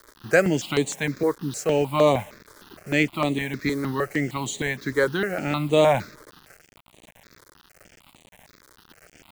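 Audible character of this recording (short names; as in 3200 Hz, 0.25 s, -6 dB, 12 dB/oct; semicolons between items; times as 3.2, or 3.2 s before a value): a quantiser's noise floor 8-bit, dither none; notches that jump at a steady rate 6.5 Hz 730–5200 Hz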